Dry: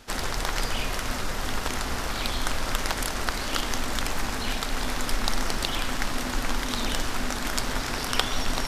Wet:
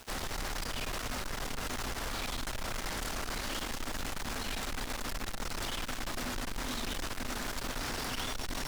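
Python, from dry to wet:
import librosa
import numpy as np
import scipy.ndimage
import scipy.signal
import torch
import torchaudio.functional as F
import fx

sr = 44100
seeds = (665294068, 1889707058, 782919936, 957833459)

y = fx.tube_stage(x, sr, drive_db=33.0, bias=0.45)
y = fx.quant_dither(y, sr, seeds[0], bits=8, dither='none')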